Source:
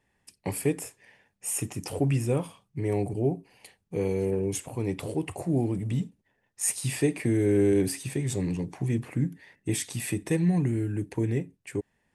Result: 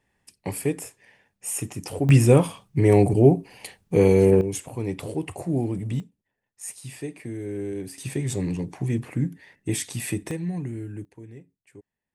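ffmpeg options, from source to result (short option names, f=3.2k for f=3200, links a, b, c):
-af "asetnsamples=n=441:p=0,asendcmd='2.09 volume volume 11dB;4.41 volume volume 1dB;6 volume volume -9dB;7.98 volume volume 2dB;10.31 volume volume -5.5dB;11.05 volume volume -16dB',volume=1dB"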